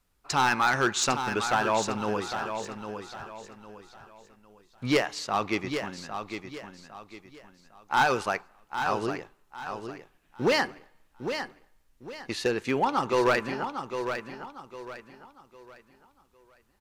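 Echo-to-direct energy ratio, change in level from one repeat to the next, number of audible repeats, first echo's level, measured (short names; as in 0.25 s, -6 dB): -7.5 dB, -9.5 dB, 3, -8.0 dB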